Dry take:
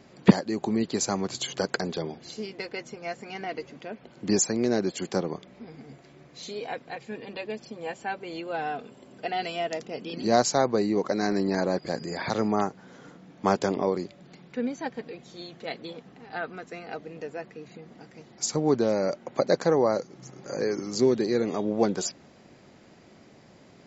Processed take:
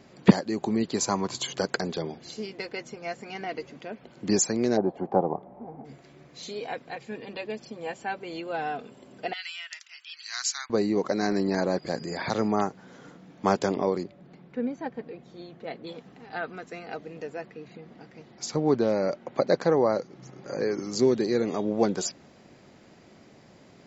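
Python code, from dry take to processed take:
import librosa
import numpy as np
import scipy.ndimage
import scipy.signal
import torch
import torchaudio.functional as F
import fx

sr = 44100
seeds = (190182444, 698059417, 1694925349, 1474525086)

y = fx.peak_eq(x, sr, hz=1000.0, db=11.0, octaves=0.22, at=(0.98, 1.48))
y = fx.lowpass_res(y, sr, hz=810.0, q=4.3, at=(4.76, 5.84), fade=0.02)
y = fx.cheby2_highpass(y, sr, hz=570.0, order=4, stop_db=50, at=(9.33, 10.7))
y = fx.lowpass(y, sr, hz=1300.0, slope=6, at=(14.03, 15.87))
y = fx.lowpass(y, sr, hz=4800.0, slope=12, at=(17.47, 20.79))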